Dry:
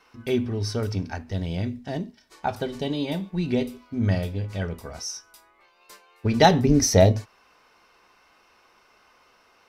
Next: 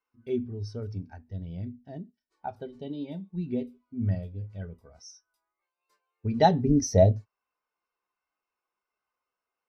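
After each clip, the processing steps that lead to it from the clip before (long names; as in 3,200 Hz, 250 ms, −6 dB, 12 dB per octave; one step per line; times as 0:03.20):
every bin expanded away from the loudest bin 1.5 to 1
level −4 dB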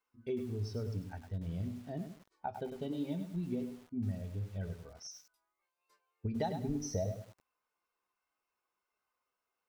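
downward compressor 6 to 1, threshold −34 dBFS, peak gain reduction 18.5 dB
feedback echo at a low word length 102 ms, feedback 35%, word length 9 bits, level −8 dB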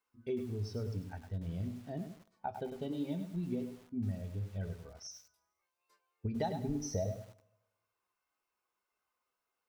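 convolution reverb RT60 1.1 s, pre-delay 7 ms, DRR 19 dB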